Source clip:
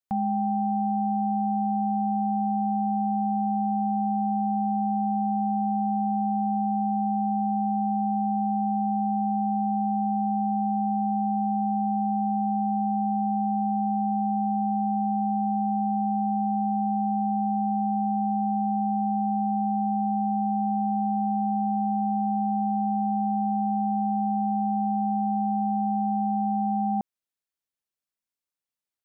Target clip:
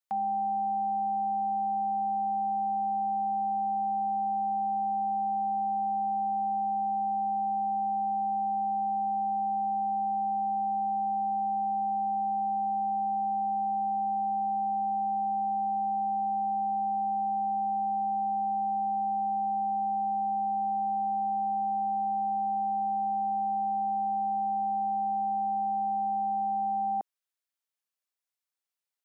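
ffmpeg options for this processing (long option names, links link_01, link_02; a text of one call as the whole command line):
ffmpeg -i in.wav -af "highpass=560" out.wav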